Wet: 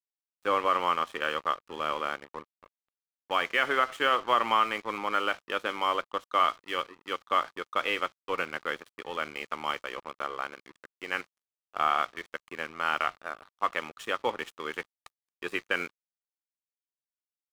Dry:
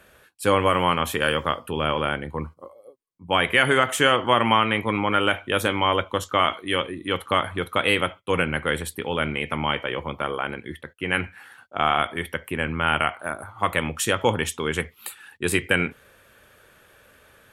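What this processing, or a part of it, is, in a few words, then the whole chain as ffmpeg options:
pocket radio on a weak battery: -af "highpass=350,lowpass=4000,aeval=exprs='sgn(val(0))*max(abs(val(0))-0.015,0)':channel_layout=same,equalizer=frequency=1200:width_type=o:width=0.24:gain=8,volume=-7dB"

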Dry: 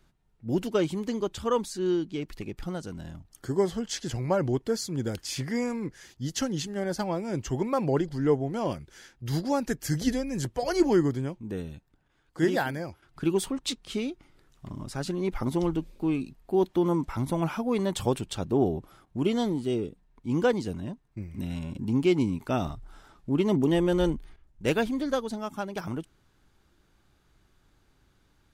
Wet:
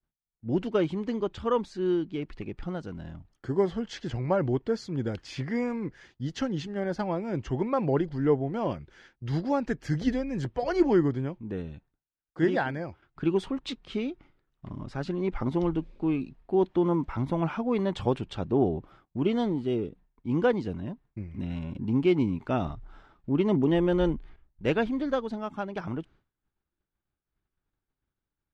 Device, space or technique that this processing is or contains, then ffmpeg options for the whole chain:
hearing-loss simulation: -af "lowpass=3000,agate=range=-33dB:threshold=-50dB:ratio=3:detection=peak"

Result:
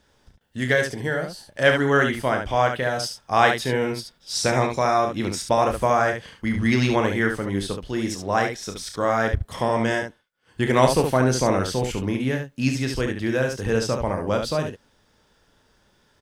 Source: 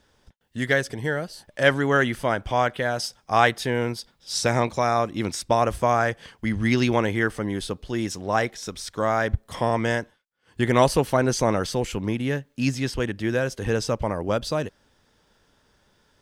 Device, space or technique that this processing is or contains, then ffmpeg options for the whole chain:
slapback doubling: -filter_complex "[0:a]asplit=3[link_01][link_02][link_03];[link_02]adelay=31,volume=-8dB[link_04];[link_03]adelay=71,volume=-6dB[link_05];[link_01][link_04][link_05]amix=inputs=3:normalize=0"

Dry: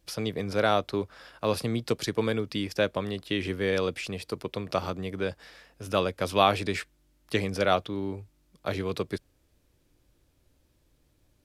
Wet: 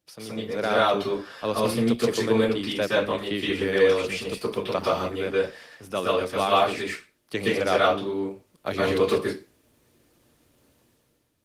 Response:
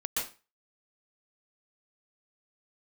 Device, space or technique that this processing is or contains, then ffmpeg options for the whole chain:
far-field microphone of a smart speaker: -filter_complex "[1:a]atrim=start_sample=2205[link_01];[0:a][link_01]afir=irnorm=-1:irlink=0,highpass=130,dynaudnorm=framelen=110:gausssize=11:maxgain=12dB,volume=-6.5dB" -ar 48000 -c:a libopus -b:a 20k

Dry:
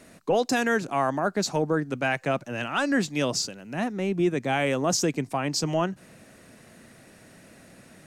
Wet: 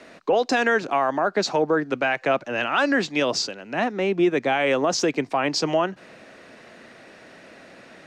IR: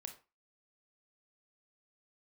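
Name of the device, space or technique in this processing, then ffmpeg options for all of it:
DJ mixer with the lows and highs turned down: -filter_complex "[0:a]acrossover=split=290 5300:gain=0.2 1 0.0708[link_01][link_02][link_03];[link_01][link_02][link_03]amix=inputs=3:normalize=0,alimiter=limit=-19.5dB:level=0:latency=1:release=110,volume=8dB"

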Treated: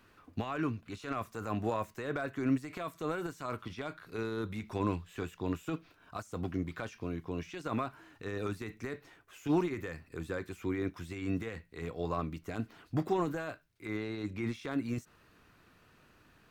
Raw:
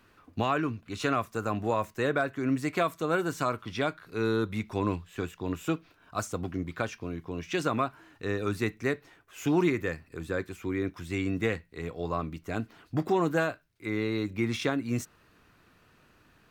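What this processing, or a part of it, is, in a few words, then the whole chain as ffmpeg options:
de-esser from a sidechain: -filter_complex "[0:a]asplit=2[link_01][link_02];[link_02]highpass=5200,apad=whole_len=727855[link_03];[link_01][link_03]sidechaincompress=threshold=-53dB:ratio=8:attack=0.89:release=33,asettb=1/sr,asplit=3[link_04][link_05][link_06];[link_04]atrim=end=13.974[link_07];[link_05]atrim=start=13.97:end=14.48,asetpts=PTS-STARTPTS,afade=type=in:duration=0.004:curve=qsin,afade=type=out:start_time=0.506:duration=0.004:curve=qsin,lowpass=11000[link_08];[link_06]atrim=start=14.476[link_09];[link_07][link_08]acrossfade=duration=0.004:curve1=hsin:curve2=qsin[link_10];[link_10][link_09]acrossfade=duration=0.004:curve1=qsin:curve2=hsin,volume=-1.5dB"

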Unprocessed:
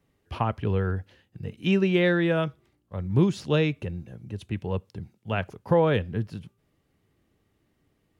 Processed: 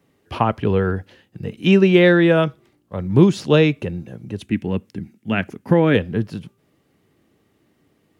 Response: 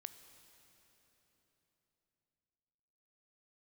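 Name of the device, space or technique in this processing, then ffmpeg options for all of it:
filter by subtraction: -filter_complex "[0:a]asplit=2[link_01][link_02];[link_02]lowpass=250,volume=-1[link_03];[link_01][link_03]amix=inputs=2:normalize=0,asettb=1/sr,asplit=3[link_04][link_05][link_06];[link_04]atrim=end=4.424[link_07];[link_05]atrim=start=4.42:end=5.95,asetpts=PTS-STARTPTS,afade=type=in:duration=0.004:curve=qsin,afade=type=out:start_time=1.526:duration=0.004:curve=qsin,equalizer=frequency=125:width_type=o:width=1:gain=-4,equalizer=frequency=250:width_type=o:width=1:gain=8,equalizer=frequency=500:width_type=o:width=1:gain=-7,equalizer=frequency=1000:width_type=o:width=1:gain=-7,equalizer=frequency=2000:width_type=o:width=1:gain=5,equalizer=frequency=4000:width_type=o:width=1:gain=-5[link_08];[link_06]atrim=start=5.946[link_09];[link_07][link_08]acrossfade=duration=0.004:curve1=hsin:curve2=qsin[link_10];[link_10][link_09]acrossfade=duration=0.004:curve1=qsin:curve2=hsin,volume=8dB"

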